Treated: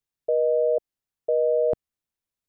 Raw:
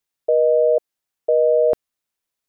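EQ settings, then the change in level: bass shelf 250 Hz +11.5 dB; -8.0 dB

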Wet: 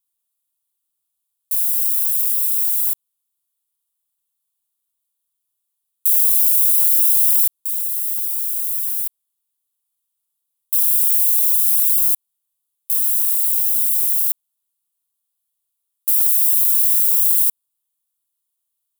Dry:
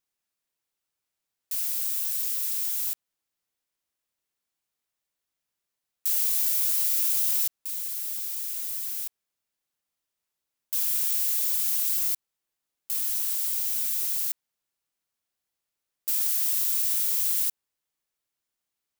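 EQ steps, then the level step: FFT filter 120 Hz 0 dB, 450 Hz -12 dB, 1.1 kHz +2 dB, 1.9 kHz -11 dB, 3.4 kHz +5 dB, 5.5 kHz -1 dB, 9.7 kHz +14 dB; -3.5 dB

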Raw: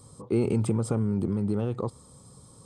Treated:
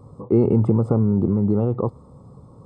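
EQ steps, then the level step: Savitzky-Golay filter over 65 samples; +8.0 dB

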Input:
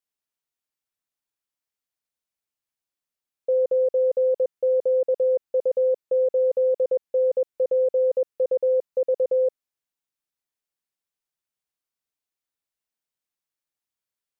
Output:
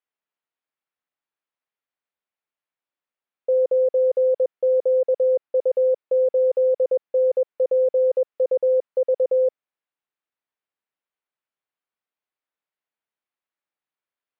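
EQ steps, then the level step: high-pass 220 Hz 6 dB/octave; distance through air 410 m; bass shelf 400 Hz -7 dB; +6.5 dB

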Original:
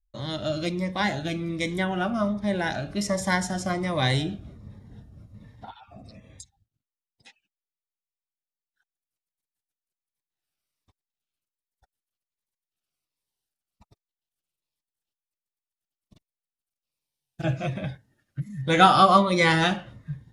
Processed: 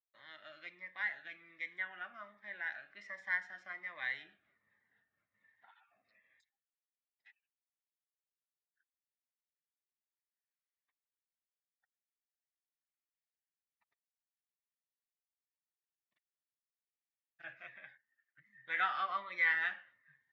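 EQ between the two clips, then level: ladder band-pass 2 kHz, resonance 70%; distance through air 55 m; tilt EQ -4 dB/octave; 0.0 dB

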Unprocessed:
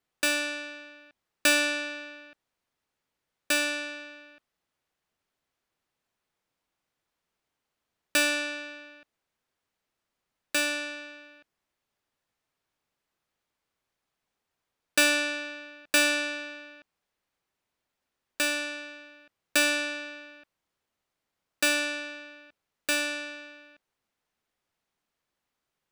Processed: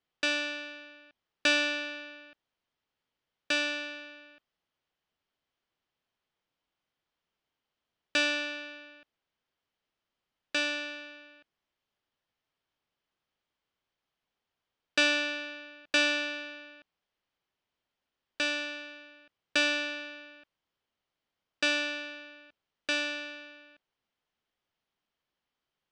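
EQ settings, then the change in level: low-pass 5.8 kHz 24 dB/octave; peaking EQ 3.1 kHz +6 dB 0.21 oct; -3.0 dB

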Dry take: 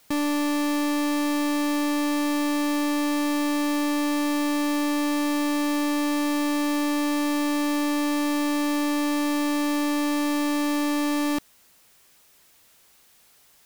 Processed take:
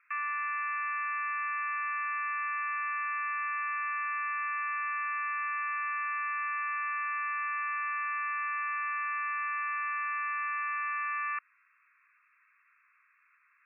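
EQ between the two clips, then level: steep high-pass 1.1 kHz 96 dB/octave; brick-wall FIR low-pass 2.7 kHz; distance through air 310 m; +4.0 dB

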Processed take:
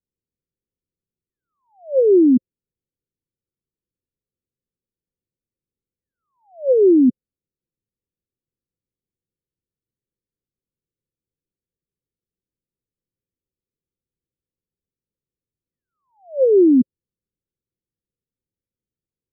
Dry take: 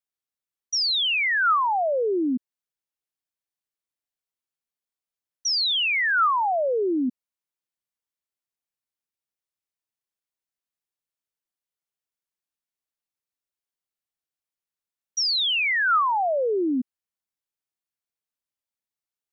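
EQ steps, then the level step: rippled Chebyshev low-pass 540 Hz, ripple 3 dB; bass shelf 350 Hz +11 dB; +7.5 dB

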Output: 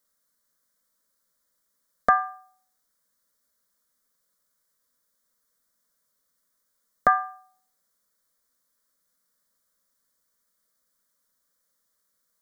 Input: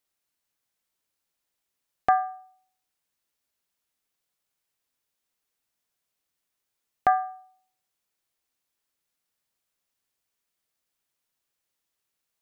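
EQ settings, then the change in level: static phaser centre 530 Hz, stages 8; +8.5 dB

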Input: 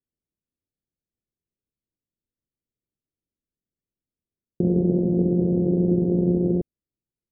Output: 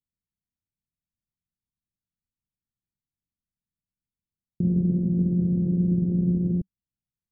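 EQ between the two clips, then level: FFT filter 190 Hz 0 dB, 400 Hz -15 dB, 690 Hz -19 dB; 0.0 dB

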